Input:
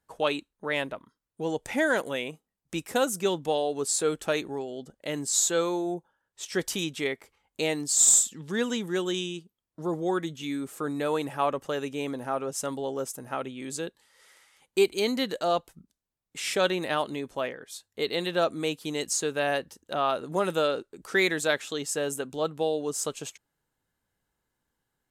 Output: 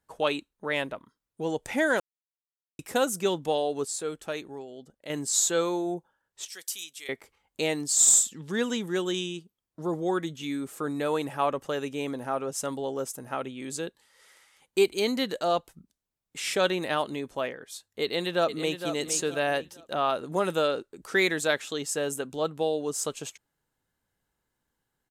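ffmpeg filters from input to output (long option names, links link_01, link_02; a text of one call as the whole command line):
ffmpeg -i in.wav -filter_complex "[0:a]asettb=1/sr,asplit=3[link_01][link_02][link_03];[link_01]atrim=end=6.484[link_04];[link_02]atrim=start=6.48:end=7.09,asetpts=PTS-STARTPTS,afade=type=in:duration=0.004:curve=qsin,afade=type=out:start_time=0.606:duration=0.004:curve=qsin,aderivative[link_05];[link_03]atrim=start=7.086[link_06];[link_04][link_05]acrossfade=duration=0.004:curve1=hsin:curve2=qsin[link_07];[link_07][link_06]acrossfade=duration=0.004:curve1=qsin:curve2=hsin,asplit=2[link_08][link_09];[link_09]afade=type=in:start_time=18.02:duration=0.01,afade=type=out:start_time=18.88:duration=0.01,aecho=0:1:460|920|1380:0.354813|0.106444|0.0319332[link_10];[link_08][link_10]amix=inputs=2:normalize=0,asplit=5[link_11][link_12][link_13][link_14][link_15];[link_11]atrim=end=2,asetpts=PTS-STARTPTS,afade=type=out:start_time=1.996:duration=0.004:curve=hsin[link_16];[link_12]atrim=start=2:end=2.79,asetpts=PTS-STARTPTS,volume=0[link_17];[link_13]atrim=start=2.79:end=3.852,asetpts=PTS-STARTPTS,afade=type=in:duration=0.004:curve=hsin[link_18];[link_14]atrim=start=3.848:end=5.102,asetpts=PTS-STARTPTS,volume=-6.5dB[link_19];[link_15]atrim=start=5.098[link_20];[link_16][link_17][link_18]concat=n=3:v=0:a=1[link_21];[link_21][link_19]acrossfade=duration=0.004:curve1=hsin:curve2=hsin[link_22];[link_22][link_20]acrossfade=duration=0.004:curve1=hsin:curve2=hsin" out.wav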